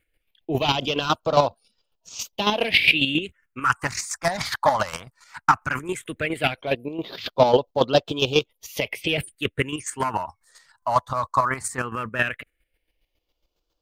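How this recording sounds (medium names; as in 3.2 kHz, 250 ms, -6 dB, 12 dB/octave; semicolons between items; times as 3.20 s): phasing stages 4, 0.16 Hz, lowest notch 430–2000 Hz; chopped level 7.3 Hz, depth 60%, duty 25%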